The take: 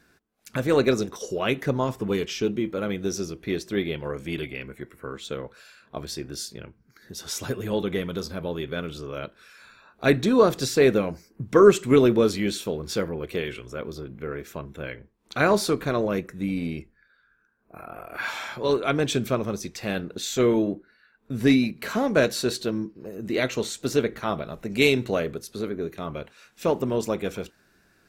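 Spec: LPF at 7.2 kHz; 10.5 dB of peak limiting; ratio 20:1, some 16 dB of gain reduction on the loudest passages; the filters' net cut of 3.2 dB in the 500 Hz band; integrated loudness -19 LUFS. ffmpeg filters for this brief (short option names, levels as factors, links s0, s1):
-af "lowpass=7200,equalizer=f=500:t=o:g=-4,acompressor=threshold=0.0398:ratio=20,volume=8.91,alimiter=limit=0.376:level=0:latency=1"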